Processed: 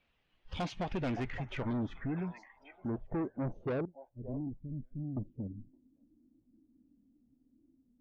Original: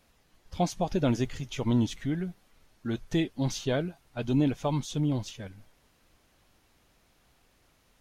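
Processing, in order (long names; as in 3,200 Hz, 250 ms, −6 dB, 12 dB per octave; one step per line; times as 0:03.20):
low-pass filter sweep 2,900 Hz → 280 Hz, 0:00.65–0:04.58
0:03.85–0:05.17: guitar amp tone stack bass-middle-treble 10-0-1
in parallel at +3 dB: downward compressor 6 to 1, threshold −40 dBFS, peak gain reduction 18.5 dB
on the sum: echo through a band-pass that steps 567 ms, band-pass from 860 Hz, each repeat 1.4 octaves, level −10 dB
soft clipping −26 dBFS, distortion −8 dB
noise reduction from a noise print of the clip's start 15 dB
level −4.5 dB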